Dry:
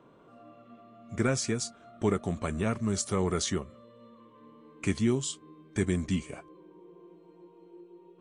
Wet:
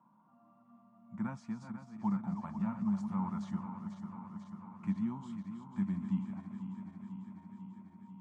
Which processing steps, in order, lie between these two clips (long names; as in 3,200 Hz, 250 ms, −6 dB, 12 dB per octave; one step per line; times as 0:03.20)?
feedback delay that plays each chunk backwards 247 ms, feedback 83%, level −9 dB
pair of resonant band-passes 430 Hz, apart 2.2 octaves
level +1 dB